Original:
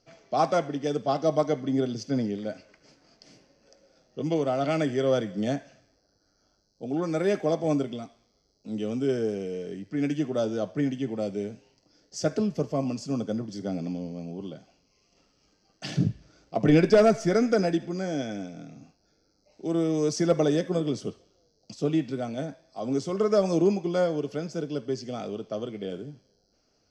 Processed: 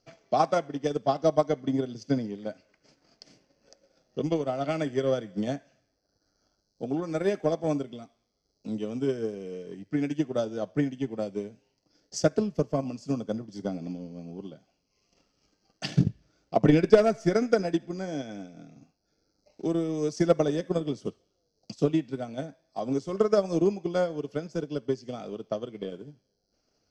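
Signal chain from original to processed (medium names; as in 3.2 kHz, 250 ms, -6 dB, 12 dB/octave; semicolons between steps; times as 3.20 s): transient shaper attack +9 dB, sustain -5 dB; trim -4.5 dB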